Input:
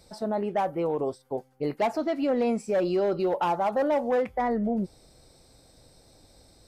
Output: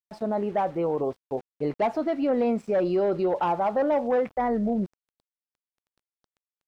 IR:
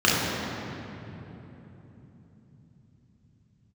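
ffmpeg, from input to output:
-af "aeval=exprs='val(0)*gte(abs(val(0)),0.00562)':channel_layout=same,aemphasis=mode=reproduction:type=75kf,volume=1.5dB"

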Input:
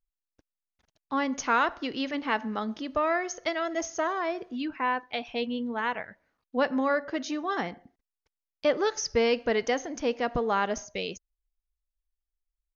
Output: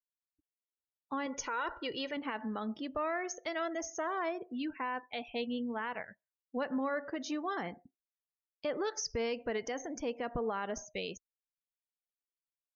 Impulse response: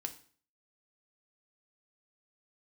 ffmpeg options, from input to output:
-filter_complex "[0:a]asettb=1/sr,asplit=3[link_01][link_02][link_03];[link_01]atrim=end=1.264[link_04];[link_02]atrim=start=1.26:end=2.17,asetpts=PTS-STARTPTS,afade=type=in:duration=0.004:curve=qsin,afade=type=out:start_time=0.906:duration=0.004:curve=qsin,aecho=1:1:2.1:0.58,atrim=end_sample=40131[link_05];[link_03]atrim=start=2.166[link_06];[link_04][link_05]acrossfade=duration=0.004:curve1=hsin:curve2=qsin[link_07];[link_07][link_06]acrossfade=duration=0.004:curve1=qsin:curve2=hsin,alimiter=limit=-22.5dB:level=0:latency=1:release=75,afftdn=noise_reduction=34:noise_floor=-47,volume=-4.5dB"

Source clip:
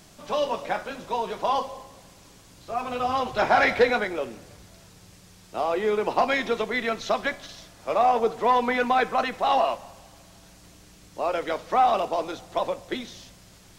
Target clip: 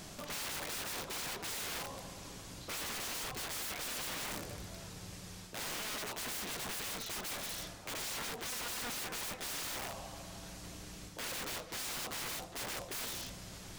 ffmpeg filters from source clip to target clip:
ffmpeg -i in.wav -af "areverse,acompressor=threshold=-31dB:ratio=8,areverse,aeval=exprs='(mod(84.1*val(0)+1,2)-1)/84.1':channel_layout=same,volume=3dB" out.wav

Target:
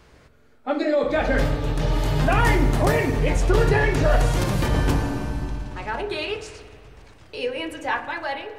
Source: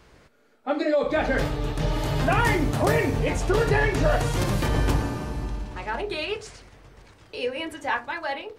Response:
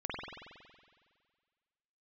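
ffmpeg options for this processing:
-filter_complex "[0:a]asplit=2[link_01][link_02];[1:a]atrim=start_sample=2205,lowshelf=frequency=210:gain=10[link_03];[link_02][link_03]afir=irnorm=-1:irlink=0,volume=-14dB[link_04];[link_01][link_04]amix=inputs=2:normalize=0"

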